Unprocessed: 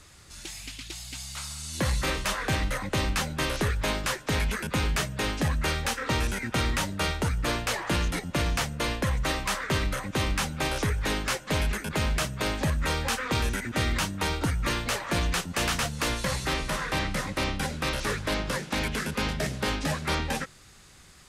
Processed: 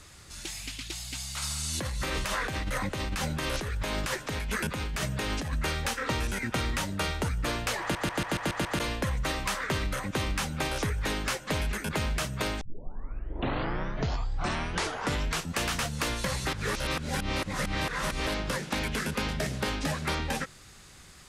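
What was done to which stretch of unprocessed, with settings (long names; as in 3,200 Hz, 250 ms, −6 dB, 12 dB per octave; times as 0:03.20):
0:01.42–0:05.53: compressor whose output falls as the input rises −31 dBFS
0:07.81: stutter in place 0.14 s, 7 plays
0:12.61: tape start 2.98 s
0:16.53–0:18.27: reverse
whole clip: downward compressor, threshold −28 dBFS; level +1.5 dB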